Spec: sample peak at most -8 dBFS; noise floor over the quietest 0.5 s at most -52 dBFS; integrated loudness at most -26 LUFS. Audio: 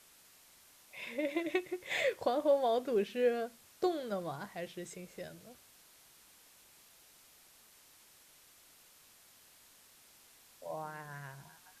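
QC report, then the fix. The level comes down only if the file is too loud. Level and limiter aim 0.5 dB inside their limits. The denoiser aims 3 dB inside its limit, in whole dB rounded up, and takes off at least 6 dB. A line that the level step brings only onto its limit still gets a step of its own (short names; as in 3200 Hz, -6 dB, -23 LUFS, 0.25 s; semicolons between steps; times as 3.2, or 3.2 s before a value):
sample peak -18.5 dBFS: OK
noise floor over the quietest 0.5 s -62 dBFS: OK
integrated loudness -35.5 LUFS: OK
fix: none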